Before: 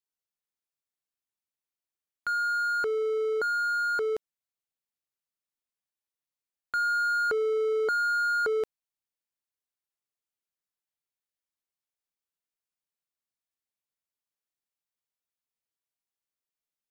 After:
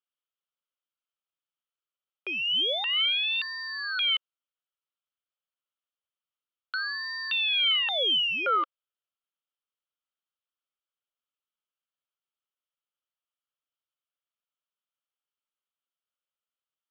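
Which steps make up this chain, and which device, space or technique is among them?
voice changer toy (ring modulator with a swept carrier 1.9 kHz, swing 70%, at 0.28 Hz; cabinet simulation 530–3800 Hz, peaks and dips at 540 Hz +6 dB, 770 Hz -3 dB, 1.3 kHz +10 dB, 1.9 kHz -7 dB, 3.1 kHz +10 dB)

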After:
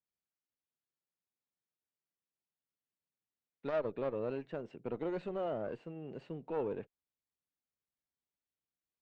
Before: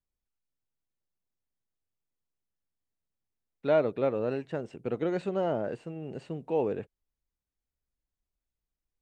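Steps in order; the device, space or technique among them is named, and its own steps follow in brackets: valve radio (band-pass 130–4100 Hz; valve stage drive 22 dB, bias 0.4; transformer saturation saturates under 300 Hz); trim -4 dB

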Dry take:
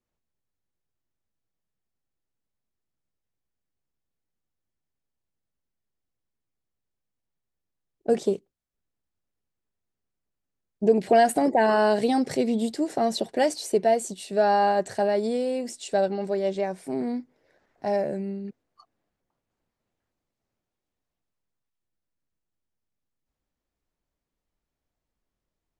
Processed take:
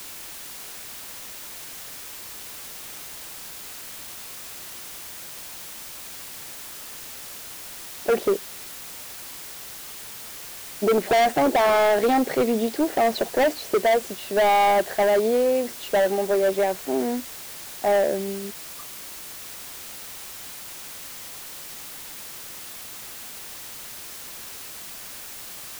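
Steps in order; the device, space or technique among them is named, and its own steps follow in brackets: aircraft radio (band-pass 340–2600 Hz; hard clipper -24 dBFS, distortion -7 dB; white noise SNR 12 dB); trim +8 dB

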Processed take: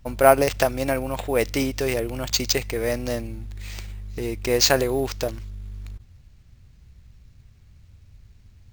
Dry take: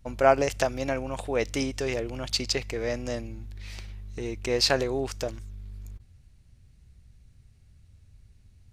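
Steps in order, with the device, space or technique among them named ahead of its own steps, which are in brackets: early companding sampler (sample-rate reducer 11 kHz, jitter 0%; companded quantiser 8-bit); trim +5 dB

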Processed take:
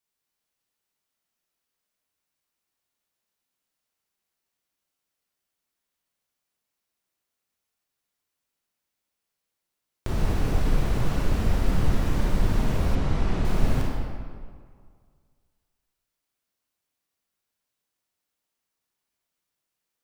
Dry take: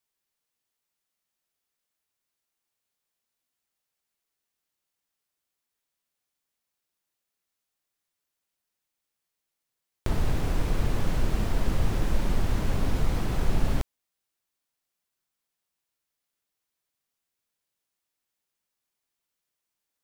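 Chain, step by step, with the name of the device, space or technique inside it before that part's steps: stairwell (reverberation RT60 2.0 s, pre-delay 27 ms, DRR -3 dB); 12.95–13.45 s: distance through air 62 m; trim -2.5 dB

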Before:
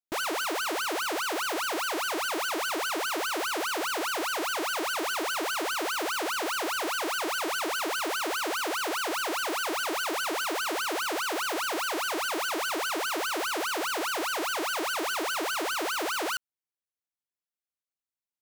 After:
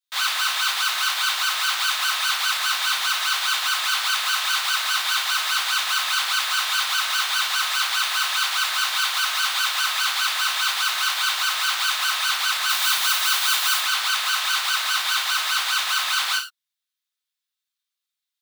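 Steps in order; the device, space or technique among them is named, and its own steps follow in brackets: headphones lying on a table (high-pass 1.1 kHz 24 dB/octave; peaking EQ 3.7 kHz +10 dB 0.54 oct); 12.69–13.79 s: treble shelf 7.6 kHz +9 dB; gated-style reverb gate 140 ms falling, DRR -3.5 dB; trim +2 dB

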